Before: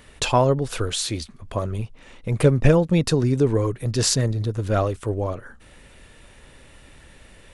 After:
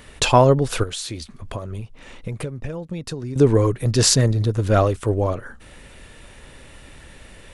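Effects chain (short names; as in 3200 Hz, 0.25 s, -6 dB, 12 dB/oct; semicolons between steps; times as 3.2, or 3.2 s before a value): 0.83–3.36 compressor 10:1, threshold -31 dBFS, peak gain reduction 21 dB; gain +4.5 dB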